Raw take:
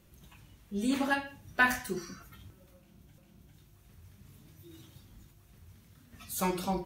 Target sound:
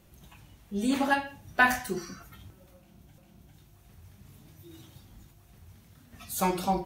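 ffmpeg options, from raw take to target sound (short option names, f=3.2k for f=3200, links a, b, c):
-af "equalizer=f=750:w=2.9:g=5.5,volume=2.5dB"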